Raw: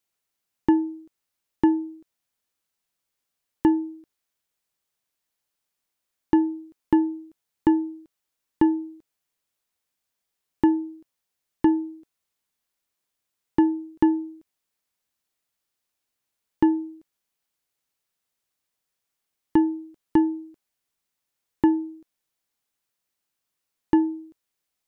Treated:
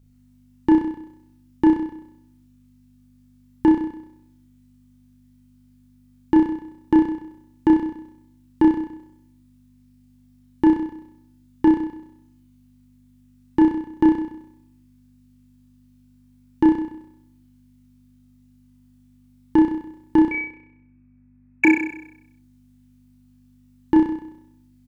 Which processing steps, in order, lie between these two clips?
0:20.31–0:21.65: voice inversion scrambler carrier 2,600 Hz
mains hum 50 Hz, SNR 29 dB
in parallel at −11 dB: gain into a clipping stage and back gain 18.5 dB
on the sum: double-tracking delay 28 ms −13 dB
on a send: flutter between parallel walls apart 5.5 metres, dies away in 0.76 s

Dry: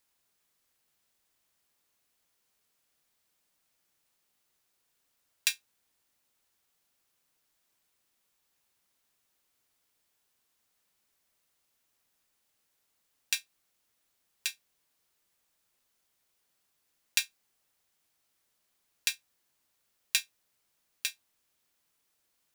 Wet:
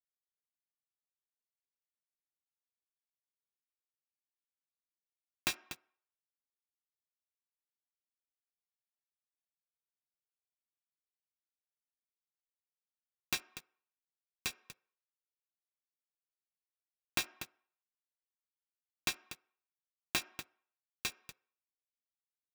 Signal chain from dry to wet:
stylus tracing distortion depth 0.38 ms
high-pass filter 110 Hz
single-tap delay 242 ms −16 dB
dead-zone distortion −47.5 dBFS
low-shelf EQ 470 Hz +8.5 dB
on a send at −19.5 dB: convolution reverb RT60 0.60 s, pre-delay 3 ms
on the sum: brickwall limiter −20 dBFS, peak gain reduction 8 dB
level +2 dB

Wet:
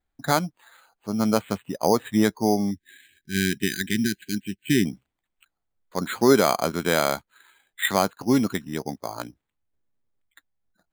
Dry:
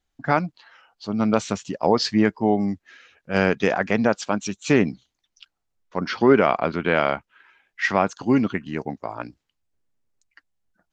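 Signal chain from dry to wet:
bad sample-rate conversion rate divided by 8×, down filtered, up hold
0:02.71–0:04.85: linear-phase brick-wall band-stop 400–1,500 Hz
level −1.5 dB

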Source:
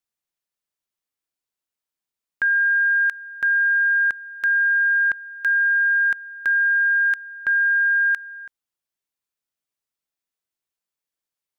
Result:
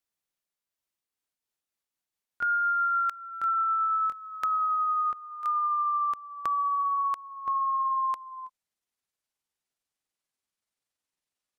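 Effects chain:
pitch glide at a constant tempo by −10.5 semitones starting unshifted
downward compressor 1.5 to 1, threshold −25 dBFS, peak gain reduction 3 dB
dynamic equaliser 1,100 Hz, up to −5 dB, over −37 dBFS, Q 1.2

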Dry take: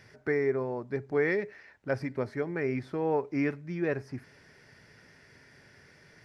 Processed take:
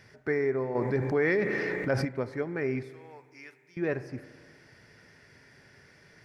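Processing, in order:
0:02.83–0:03.77: first difference
spring reverb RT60 1.9 s, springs 33/38 ms, chirp 45 ms, DRR 13.5 dB
0:00.75–0:02.05: envelope flattener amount 70%

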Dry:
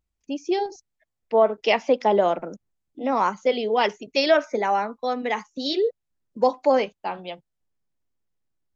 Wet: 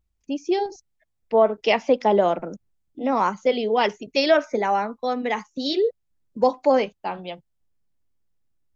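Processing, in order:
low-shelf EQ 180 Hz +7.5 dB

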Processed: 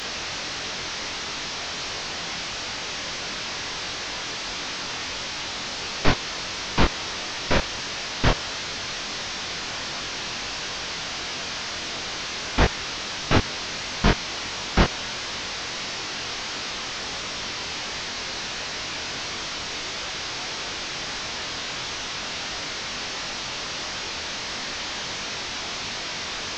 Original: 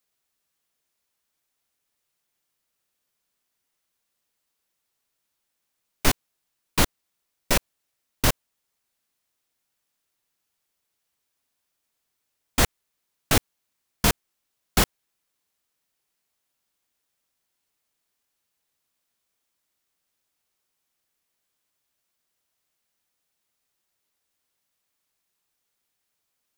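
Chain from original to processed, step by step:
linear delta modulator 32 kbit/s, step −27 dBFS
chorus effect 1.5 Hz, delay 20 ms, depth 4.6 ms
level +6 dB

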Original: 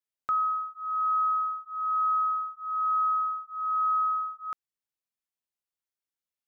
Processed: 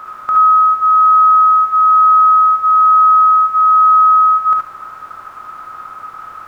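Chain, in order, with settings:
compressor on every frequency bin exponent 0.2
parametric band 890 Hz +5 dB 1.2 octaves
reverb whose tail is shaped and stops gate 90 ms rising, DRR −0.5 dB
level +7 dB

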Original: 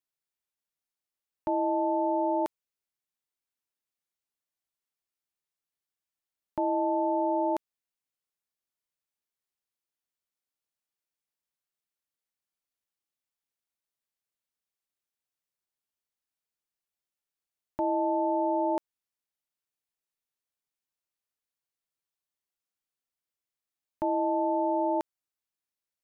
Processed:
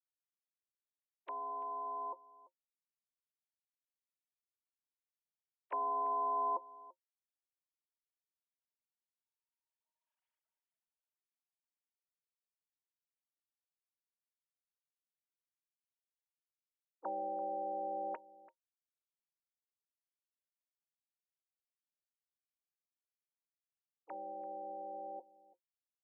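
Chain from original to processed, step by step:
three sine waves on the formant tracks
source passing by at 0:10.23, 45 m/s, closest 6.6 metres
low-shelf EQ 190 Hz +7 dB
hollow resonant body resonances 530/930 Hz, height 17 dB, ringing for 90 ms
on a send: single-tap delay 338 ms −20 dB
on the sum: pitch-shifted copies added −7 semitones −10 dB
level +18 dB

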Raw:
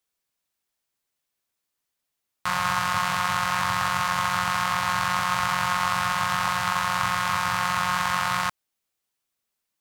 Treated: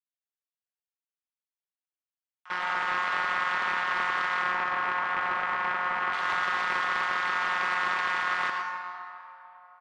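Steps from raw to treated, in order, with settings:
high-pass filter 760 Hz 24 dB per octave
noise gate with hold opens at −13 dBFS
low-pass filter 2,900 Hz 12 dB per octave, from 0:04.42 1,500 Hz, from 0:06.13 3,400 Hz
comb filter 5.4 ms, depth 64%
brickwall limiter −17.5 dBFS, peak gain reduction 7.5 dB
convolution reverb RT60 3.5 s, pre-delay 93 ms, DRR 1 dB
highs frequency-modulated by the lows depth 0.22 ms
level −7 dB

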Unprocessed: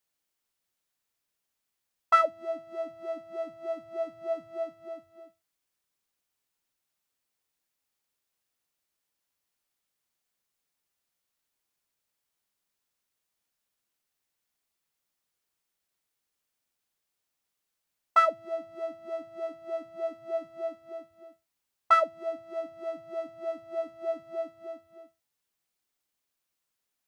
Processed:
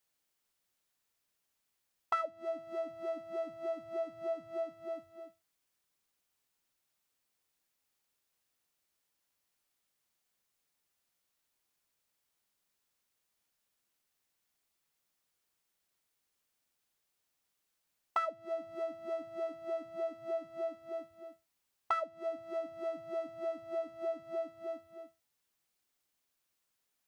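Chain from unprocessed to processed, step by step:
downward compressor 3 to 1, threshold −36 dBFS, peak gain reduction 15 dB
level +1 dB

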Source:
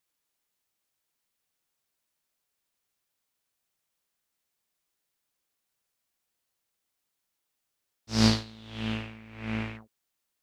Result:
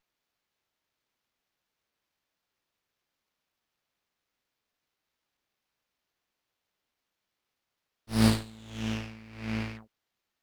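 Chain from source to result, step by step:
windowed peak hold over 5 samples

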